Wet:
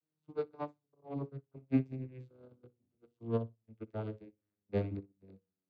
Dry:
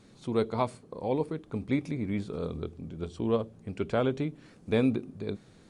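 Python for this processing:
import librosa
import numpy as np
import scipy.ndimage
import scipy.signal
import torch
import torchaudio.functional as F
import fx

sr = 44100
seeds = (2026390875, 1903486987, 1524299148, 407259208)

p1 = fx.vocoder_glide(x, sr, note=51, semitones=-9)
p2 = fx.low_shelf(p1, sr, hz=250.0, db=-5.0)
p3 = fx.hum_notches(p2, sr, base_hz=60, count=9)
p4 = 10.0 ** (-32.5 / 20.0) * np.tanh(p3 / 10.0 ** (-32.5 / 20.0))
p5 = p3 + (p4 * librosa.db_to_amplitude(-7.0))
p6 = fx.echo_feedback(p5, sr, ms=61, feedback_pct=28, wet_db=-13)
y = fx.upward_expand(p6, sr, threshold_db=-45.0, expansion=2.5)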